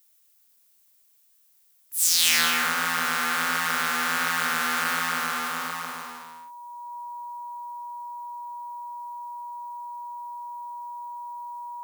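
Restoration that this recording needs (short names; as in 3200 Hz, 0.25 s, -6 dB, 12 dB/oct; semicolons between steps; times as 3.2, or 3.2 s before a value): notch 960 Hz, Q 30; expander -54 dBFS, range -21 dB; inverse comb 0.214 s -4.5 dB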